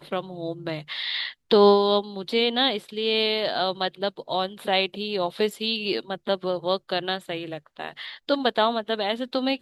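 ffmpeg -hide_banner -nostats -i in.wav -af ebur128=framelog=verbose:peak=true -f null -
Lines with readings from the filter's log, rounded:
Integrated loudness:
  I:         -24.6 LUFS
  Threshold: -34.9 LUFS
Loudness range:
  LRA:         5.4 LU
  Threshold: -44.9 LUFS
  LRA low:   -27.7 LUFS
  LRA high:  -22.3 LUFS
True peak:
  Peak:       -5.1 dBFS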